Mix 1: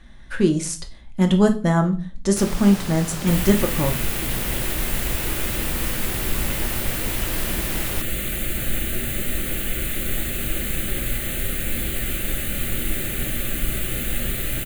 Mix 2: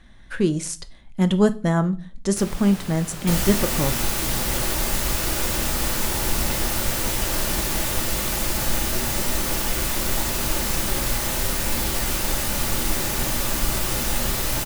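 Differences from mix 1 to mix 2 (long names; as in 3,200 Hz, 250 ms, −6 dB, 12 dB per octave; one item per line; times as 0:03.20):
speech: send −7.5 dB
first sound −4.5 dB
second sound: remove phaser with its sweep stopped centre 2,300 Hz, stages 4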